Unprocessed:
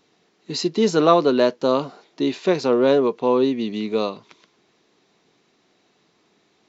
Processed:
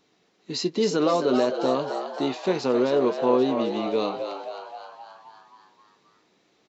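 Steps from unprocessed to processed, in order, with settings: peak limiter -10.5 dBFS, peak gain reduction 8 dB; doubling 16 ms -11 dB; on a send: frequency-shifting echo 264 ms, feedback 60%, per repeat +91 Hz, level -8 dB; on the sum: trim -3.5 dB

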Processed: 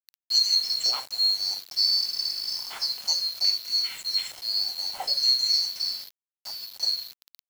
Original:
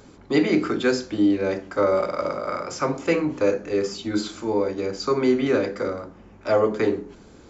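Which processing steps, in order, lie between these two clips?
split-band scrambler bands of 4 kHz; 5.96–6.83 s: compression 6:1, threshold -32 dBFS, peak gain reduction 16 dB; LFO high-pass square 0.58 Hz 560–2200 Hz; bit crusher 6-bit; trim -5 dB

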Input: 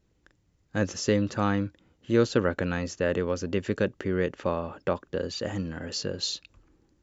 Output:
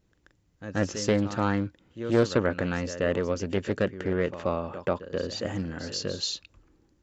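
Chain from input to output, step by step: pre-echo 132 ms -12.5 dB; loudspeaker Doppler distortion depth 0.24 ms

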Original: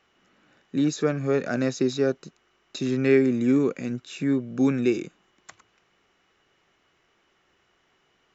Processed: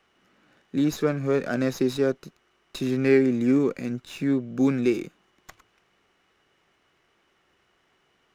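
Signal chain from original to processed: sliding maximum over 3 samples

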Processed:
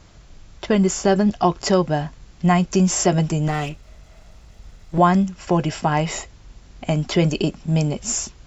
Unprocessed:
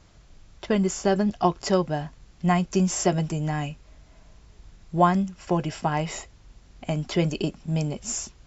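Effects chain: 3.48–4.98 s: comb filter that takes the minimum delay 1.5 ms; in parallel at +1 dB: peak limiter -16.5 dBFS, peak gain reduction 9.5 dB

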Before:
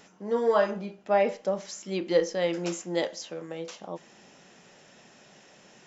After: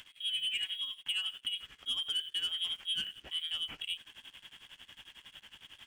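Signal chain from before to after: bass shelf 77 Hz +10.5 dB; frequency inversion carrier 3.5 kHz; compression 6:1, threshold -34 dBFS, peak gain reduction 16 dB; tremolo 11 Hz, depth 75%; waveshaping leveller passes 2; peaking EQ 570 Hz -11.5 dB 2.1 oct

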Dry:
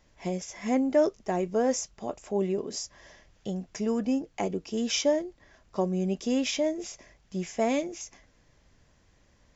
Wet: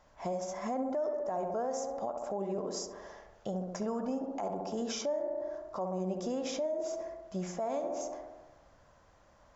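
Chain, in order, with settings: high-order bell 900 Hz +11 dB; tape echo 67 ms, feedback 76%, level -6.5 dB, low-pass 1.5 kHz; compression 3:1, threshold -28 dBFS, peak gain reduction 14.5 dB; peak limiter -22.5 dBFS, peak gain reduction 8 dB; dynamic bell 2.6 kHz, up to -6 dB, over -55 dBFS, Q 1.4; trim -3.5 dB

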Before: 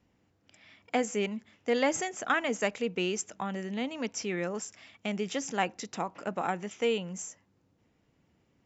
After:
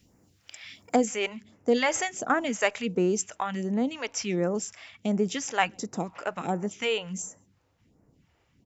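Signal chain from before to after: treble shelf 2.3 kHz +10 dB, from 0.96 s -3.5 dB; echo from a far wall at 23 m, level -29 dB; phase shifter stages 2, 1.4 Hz, lowest notch 180–3200 Hz; trim +7 dB

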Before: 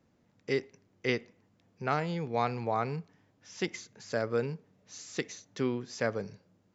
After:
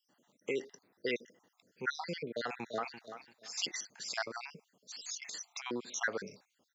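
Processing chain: random holes in the spectrogram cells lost 59%; peak limiter -27 dBFS, peak gain reduction 10 dB; high-pass 220 Hz 12 dB/octave; 5.08–5.66 s: compressor with a negative ratio -51 dBFS, ratio -0.5; tilt EQ +2 dB/octave; 2.32–2.99 s: echo throw 340 ms, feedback 25%, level -11 dB; trim +4.5 dB

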